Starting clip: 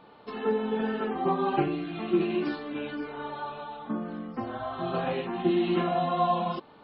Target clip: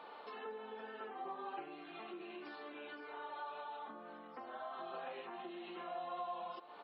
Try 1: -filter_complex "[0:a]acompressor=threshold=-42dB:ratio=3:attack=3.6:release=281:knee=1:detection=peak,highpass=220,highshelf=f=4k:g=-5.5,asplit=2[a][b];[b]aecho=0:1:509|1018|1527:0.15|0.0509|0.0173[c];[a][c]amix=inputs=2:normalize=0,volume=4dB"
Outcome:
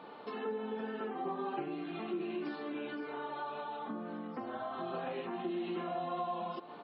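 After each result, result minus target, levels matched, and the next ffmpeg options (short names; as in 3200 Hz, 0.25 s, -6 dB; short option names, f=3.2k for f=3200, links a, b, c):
250 Hz band +6.0 dB; compressor: peak gain reduction -4.5 dB
-filter_complex "[0:a]acompressor=threshold=-42dB:ratio=3:attack=3.6:release=281:knee=1:detection=peak,highpass=550,highshelf=f=4k:g=-5.5,asplit=2[a][b];[b]aecho=0:1:509|1018|1527:0.15|0.0509|0.0173[c];[a][c]amix=inputs=2:normalize=0,volume=4dB"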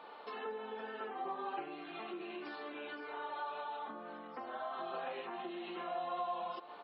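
compressor: peak gain reduction -4.5 dB
-filter_complex "[0:a]acompressor=threshold=-48.5dB:ratio=3:attack=3.6:release=281:knee=1:detection=peak,highpass=550,highshelf=f=4k:g=-5.5,asplit=2[a][b];[b]aecho=0:1:509|1018|1527:0.15|0.0509|0.0173[c];[a][c]amix=inputs=2:normalize=0,volume=4dB"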